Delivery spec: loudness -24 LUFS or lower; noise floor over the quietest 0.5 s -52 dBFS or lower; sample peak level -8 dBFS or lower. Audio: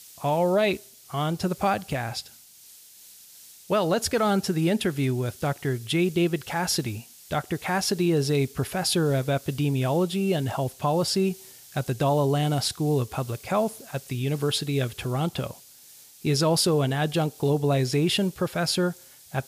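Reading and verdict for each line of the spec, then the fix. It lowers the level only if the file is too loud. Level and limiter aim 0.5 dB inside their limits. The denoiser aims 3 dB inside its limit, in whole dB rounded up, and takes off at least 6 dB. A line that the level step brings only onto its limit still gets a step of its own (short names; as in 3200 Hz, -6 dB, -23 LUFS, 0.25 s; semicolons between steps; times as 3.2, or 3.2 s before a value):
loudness -25.5 LUFS: OK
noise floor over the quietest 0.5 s -50 dBFS: fail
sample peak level -11.5 dBFS: OK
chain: denoiser 6 dB, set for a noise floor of -50 dBFS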